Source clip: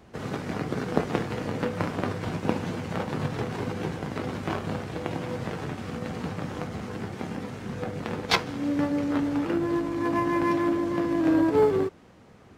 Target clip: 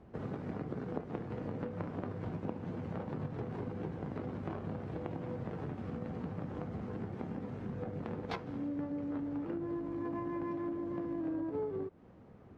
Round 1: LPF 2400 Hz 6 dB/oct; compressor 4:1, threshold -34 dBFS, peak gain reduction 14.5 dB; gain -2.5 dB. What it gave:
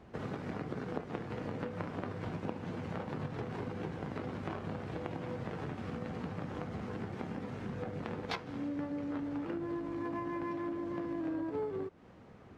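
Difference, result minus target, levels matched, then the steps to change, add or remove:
2000 Hz band +5.5 dB
change: LPF 660 Hz 6 dB/oct

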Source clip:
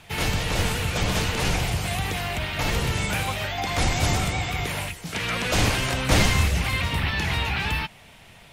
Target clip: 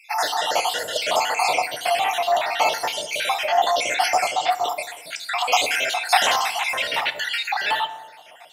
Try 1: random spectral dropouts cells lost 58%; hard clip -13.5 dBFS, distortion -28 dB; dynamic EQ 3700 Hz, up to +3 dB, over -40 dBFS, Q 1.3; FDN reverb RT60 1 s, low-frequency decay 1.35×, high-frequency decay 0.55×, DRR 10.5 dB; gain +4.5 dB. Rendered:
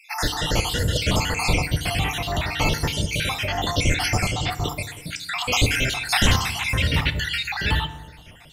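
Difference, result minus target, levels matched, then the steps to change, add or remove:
1000 Hz band -7.0 dB
add after dynamic EQ: resonant high-pass 710 Hz, resonance Q 3.6

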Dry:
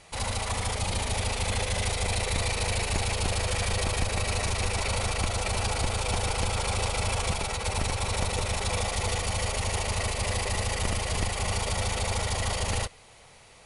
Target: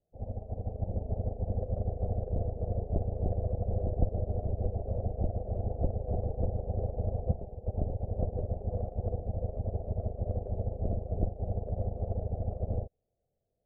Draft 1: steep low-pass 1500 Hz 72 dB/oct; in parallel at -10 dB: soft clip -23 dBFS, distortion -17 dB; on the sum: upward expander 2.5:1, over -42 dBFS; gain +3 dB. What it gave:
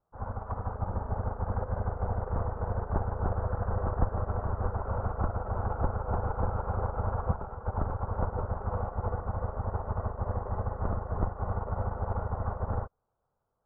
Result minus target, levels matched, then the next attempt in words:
1000 Hz band +10.5 dB
steep low-pass 710 Hz 72 dB/oct; in parallel at -10 dB: soft clip -23 dBFS, distortion -17 dB; on the sum: upward expander 2.5:1, over -42 dBFS; gain +3 dB

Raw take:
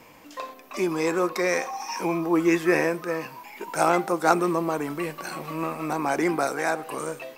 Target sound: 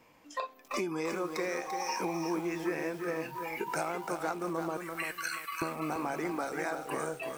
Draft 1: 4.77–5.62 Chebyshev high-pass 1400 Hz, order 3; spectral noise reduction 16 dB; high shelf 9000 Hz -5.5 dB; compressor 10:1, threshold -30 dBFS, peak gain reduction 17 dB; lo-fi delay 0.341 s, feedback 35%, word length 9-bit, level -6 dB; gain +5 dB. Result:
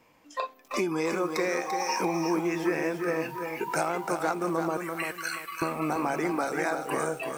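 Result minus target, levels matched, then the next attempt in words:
compressor: peak gain reduction -6 dB
4.77–5.62 Chebyshev high-pass 1400 Hz, order 3; spectral noise reduction 16 dB; high shelf 9000 Hz -5.5 dB; compressor 10:1, threshold -36.5 dBFS, peak gain reduction 22.5 dB; lo-fi delay 0.341 s, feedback 35%, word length 9-bit, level -6 dB; gain +5 dB

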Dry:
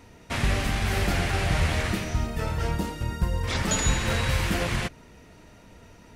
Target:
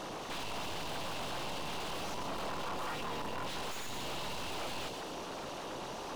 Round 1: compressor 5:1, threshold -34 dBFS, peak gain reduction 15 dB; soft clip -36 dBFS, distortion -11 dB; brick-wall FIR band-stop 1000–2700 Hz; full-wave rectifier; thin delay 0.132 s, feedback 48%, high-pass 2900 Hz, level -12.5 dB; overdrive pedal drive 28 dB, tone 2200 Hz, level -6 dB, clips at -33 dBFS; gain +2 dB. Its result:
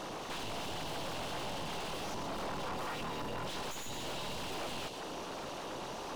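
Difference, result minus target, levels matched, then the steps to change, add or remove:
compressor: peak gain reduction +8 dB
change: compressor 5:1, threshold -24 dBFS, peak gain reduction 7 dB

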